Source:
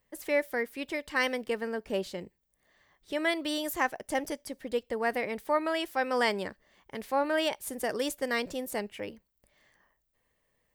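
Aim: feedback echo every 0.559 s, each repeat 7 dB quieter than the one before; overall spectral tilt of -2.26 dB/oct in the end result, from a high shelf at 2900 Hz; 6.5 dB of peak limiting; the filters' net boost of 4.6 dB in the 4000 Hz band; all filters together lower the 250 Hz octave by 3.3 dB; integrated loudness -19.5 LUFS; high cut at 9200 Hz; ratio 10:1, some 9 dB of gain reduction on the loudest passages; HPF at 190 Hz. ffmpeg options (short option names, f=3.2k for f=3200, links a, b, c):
-af "highpass=190,lowpass=9.2k,equalizer=f=250:t=o:g=-3,highshelf=f=2.9k:g=-3,equalizer=f=4k:t=o:g=9,acompressor=threshold=-31dB:ratio=10,alimiter=level_in=2.5dB:limit=-24dB:level=0:latency=1,volume=-2.5dB,aecho=1:1:559|1118|1677|2236|2795:0.447|0.201|0.0905|0.0407|0.0183,volume=18.5dB"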